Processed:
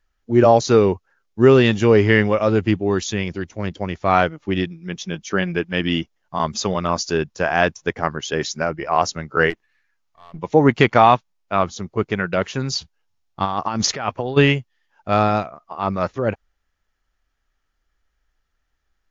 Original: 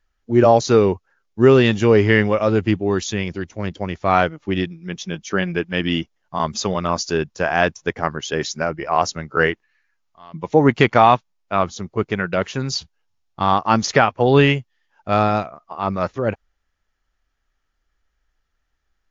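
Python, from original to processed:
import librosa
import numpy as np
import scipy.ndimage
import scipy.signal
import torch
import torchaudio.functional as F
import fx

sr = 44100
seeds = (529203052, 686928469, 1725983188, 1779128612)

y = fx.halfwave_gain(x, sr, db=-7.0, at=(9.5, 10.39))
y = fx.over_compress(y, sr, threshold_db=-22.0, ratio=-1.0, at=(13.44, 14.36), fade=0.02)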